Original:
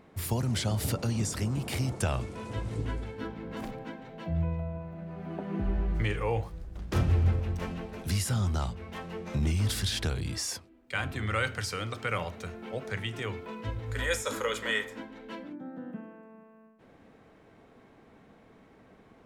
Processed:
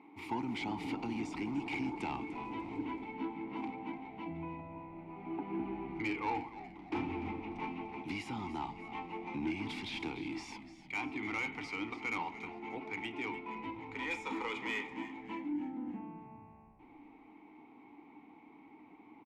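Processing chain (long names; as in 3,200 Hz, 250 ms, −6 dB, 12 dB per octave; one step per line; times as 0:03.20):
formant filter u
mid-hump overdrive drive 16 dB, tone 3,100 Hz, clips at −31.5 dBFS
on a send: echo with shifted repeats 296 ms, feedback 43%, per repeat −65 Hz, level −14 dB
on the sum: level +5.5 dB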